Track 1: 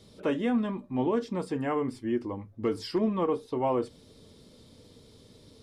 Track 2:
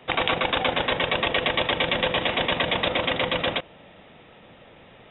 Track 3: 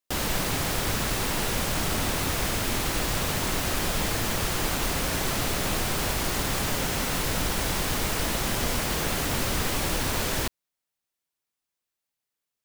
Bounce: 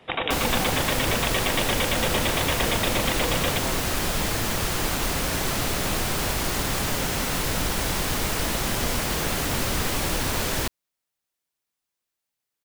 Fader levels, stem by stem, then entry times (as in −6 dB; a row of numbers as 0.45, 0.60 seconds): −9.5, −3.5, +1.5 decibels; 0.00, 0.00, 0.20 seconds